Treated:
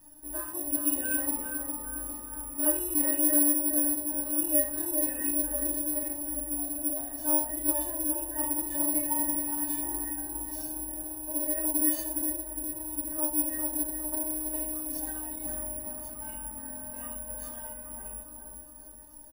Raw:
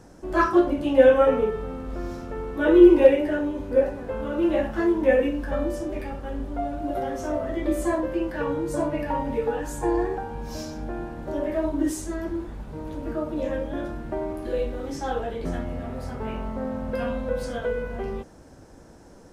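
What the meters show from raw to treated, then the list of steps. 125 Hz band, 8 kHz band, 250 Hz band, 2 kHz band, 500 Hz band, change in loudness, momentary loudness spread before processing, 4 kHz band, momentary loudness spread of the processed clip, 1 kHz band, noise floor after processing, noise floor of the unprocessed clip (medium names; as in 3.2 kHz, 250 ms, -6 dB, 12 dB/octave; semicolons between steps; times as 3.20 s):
-16.0 dB, +18.5 dB, -9.5 dB, -11.5 dB, -17.5 dB, -3.5 dB, 15 LU, -9.5 dB, 13 LU, -12.0 dB, -47 dBFS, -48 dBFS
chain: peaking EQ 4.8 kHz -5.5 dB 0.55 oct; comb 1.1 ms, depth 78%; peak limiter -15 dBFS, peak gain reduction 8.5 dB; inharmonic resonator 300 Hz, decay 0.21 s, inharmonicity 0.002; bucket-brigade echo 409 ms, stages 4096, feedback 55%, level -5 dB; careless resampling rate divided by 4×, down none, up zero stuff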